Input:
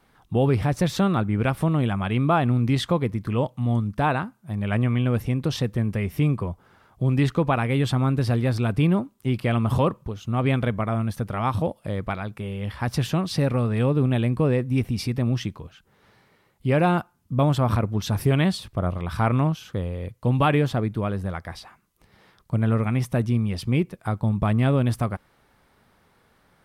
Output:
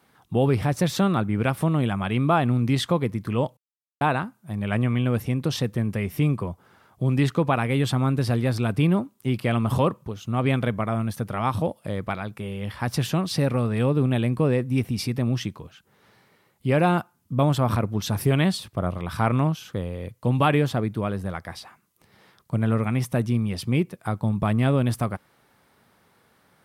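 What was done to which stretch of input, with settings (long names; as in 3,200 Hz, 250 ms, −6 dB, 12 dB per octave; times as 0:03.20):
0:03.57–0:04.01: silence
whole clip: high-pass filter 94 Hz; high-shelf EQ 6,800 Hz +5 dB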